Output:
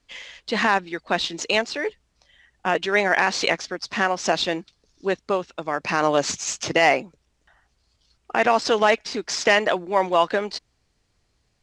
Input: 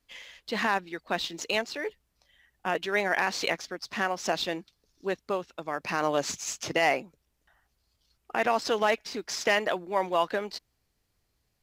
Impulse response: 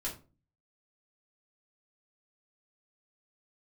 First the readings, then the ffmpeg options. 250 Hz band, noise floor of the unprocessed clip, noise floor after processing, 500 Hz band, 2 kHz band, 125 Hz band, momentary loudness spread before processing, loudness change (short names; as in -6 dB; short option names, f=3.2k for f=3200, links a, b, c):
+7.0 dB, -76 dBFS, -70 dBFS, +7.0 dB, +7.0 dB, +7.0 dB, 10 LU, +7.0 dB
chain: -af "lowpass=f=8.5k:w=0.5412,lowpass=f=8.5k:w=1.3066,volume=7dB"